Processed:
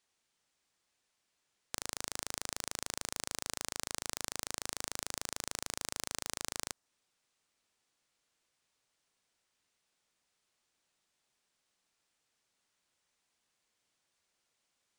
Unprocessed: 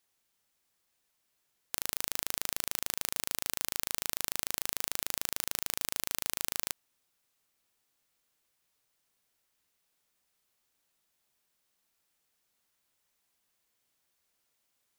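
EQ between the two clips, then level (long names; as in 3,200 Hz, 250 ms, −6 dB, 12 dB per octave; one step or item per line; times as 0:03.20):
low-shelf EQ 88 Hz −4 dB
dynamic equaliser 2,800 Hz, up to −6 dB, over −58 dBFS, Q 1.2
Savitzky-Golay smoothing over 9 samples
0.0 dB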